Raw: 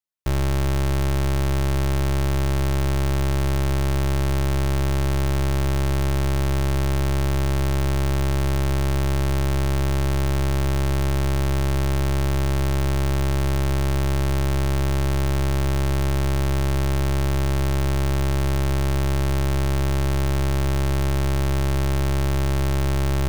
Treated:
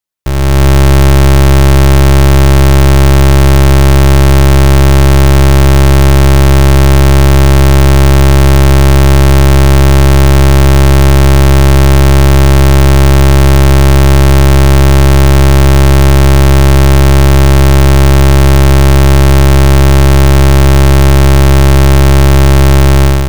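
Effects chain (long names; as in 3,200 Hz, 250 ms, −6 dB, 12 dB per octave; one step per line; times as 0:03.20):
automatic gain control gain up to 9 dB
level +8 dB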